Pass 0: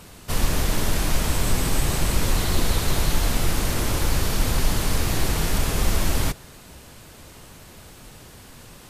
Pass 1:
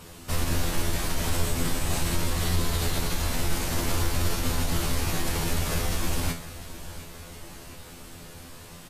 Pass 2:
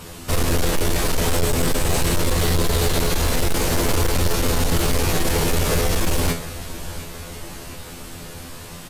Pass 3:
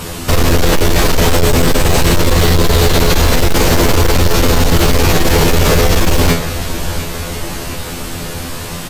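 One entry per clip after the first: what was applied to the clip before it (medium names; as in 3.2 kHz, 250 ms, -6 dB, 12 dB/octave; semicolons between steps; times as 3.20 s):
peak limiter -16 dBFS, peak gain reduction 9 dB; feedback comb 85 Hz, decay 0.3 s, harmonics all, mix 90%; feedback delay 710 ms, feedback 57%, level -16 dB; trim +7.5 dB
dynamic bell 460 Hz, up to +8 dB, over -52 dBFS, Q 2.6; overload inside the chain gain 22 dB; trim +8 dB
dynamic bell 9.9 kHz, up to -7 dB, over -45 dBFS, Q 1.4; in parallel at -2.5 dB: compressor with a negative ratio -22 dBFS, ratio -1; on the sum: trim +6 dB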